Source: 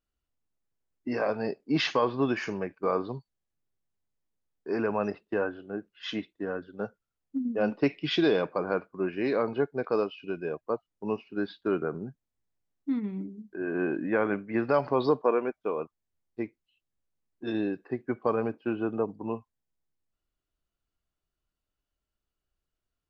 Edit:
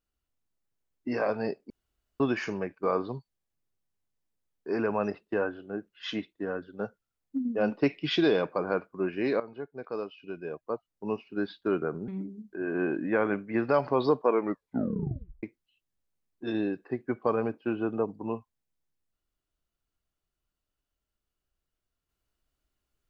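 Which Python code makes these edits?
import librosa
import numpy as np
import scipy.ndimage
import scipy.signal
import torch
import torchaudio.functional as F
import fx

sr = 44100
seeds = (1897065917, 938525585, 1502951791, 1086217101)

y = fx.edit(x, sr, fx.room_tone_fill(start_s=1.7, length_s=0.5),
    fx.fade_in_from(start_s=9.4, length_s=1.97, floor_db=-15.0),
    fx.cut(start_s=12.08, length_s=1.0),
    fx.tape_stop(start_s=15.29, length_s=1.14), tone=tone)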